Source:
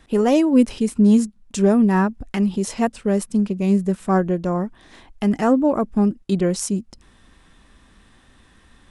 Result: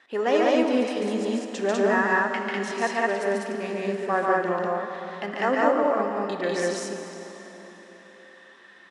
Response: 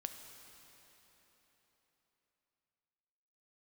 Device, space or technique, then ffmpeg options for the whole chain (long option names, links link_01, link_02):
station announcement: -filter_complex "[0:a]highpass=500,lowpass=4700,equalizer=frequency=1800:width_type=o:width=0.31:gain=9,aecho=1:1:142.9|198.3:0.794|1[link_01];[1:a]atrim=start_sample=2205[link_02];[link_01][link_02]afir=irnorm=-1:irlink=0"